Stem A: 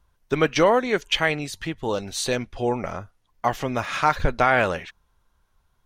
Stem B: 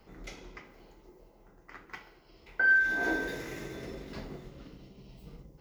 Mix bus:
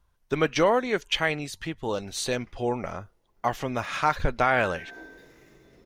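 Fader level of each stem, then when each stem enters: -3.5, -14.5 dB; 0.00, 1.90 s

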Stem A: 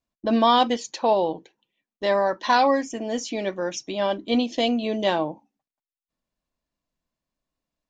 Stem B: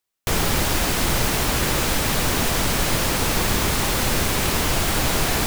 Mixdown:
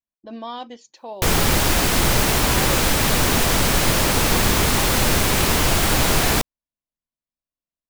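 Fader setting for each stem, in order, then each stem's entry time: -14.5, +3.0 dB; 0.00, 0.95 s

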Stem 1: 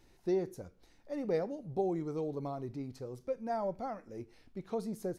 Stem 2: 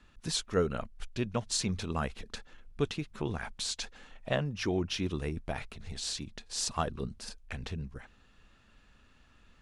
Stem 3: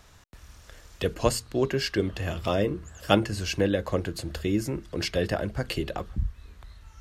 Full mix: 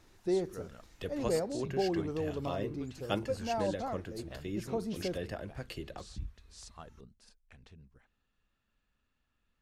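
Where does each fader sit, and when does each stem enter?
+1.0, -18.0, -12.5 dB; 0.00, 0.00, 0.00 s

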